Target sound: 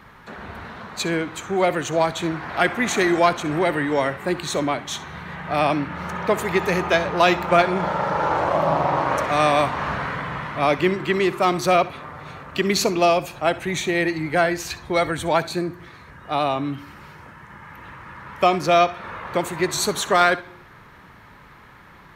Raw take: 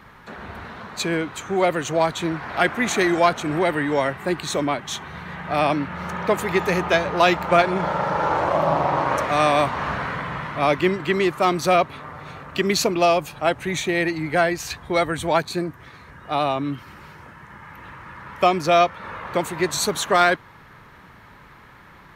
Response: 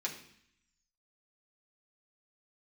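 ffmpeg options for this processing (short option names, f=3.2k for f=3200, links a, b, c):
-filter_complex "[0:a]asplit=2[a][b];[1:a]atrim=start_sample=2205,adelay=61[c];[b][c]afir=irnorm=-1:irlink=0,volume=-17.5dB[d];[a][d]amix=inputs=2:normalize=0"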